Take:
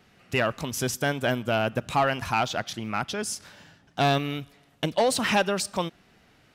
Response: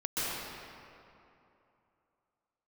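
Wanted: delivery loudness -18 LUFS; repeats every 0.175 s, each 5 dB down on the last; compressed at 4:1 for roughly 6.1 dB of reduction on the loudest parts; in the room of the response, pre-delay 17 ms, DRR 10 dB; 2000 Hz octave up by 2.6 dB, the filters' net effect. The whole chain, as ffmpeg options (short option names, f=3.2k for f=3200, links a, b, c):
-filter_complex "[0:a]equalizer=f=2k:t=o:g=3.5,acompressor=threshold=-25dB:ratio=4,aecho=1:1:175|350|525|700|875|1050|1225:0.562|0.315|0.176|0.0988|0.0553|0.031|0.0173,asplit=2[a][b];[1:a]atrim=start_sample=2205,adelay=17[c];[b][c]afir=irnorm=-1:irlink=0,volume=-18.5dB[d];[a][d]amix=inputs=2:normalize=0,volume=10.5dB"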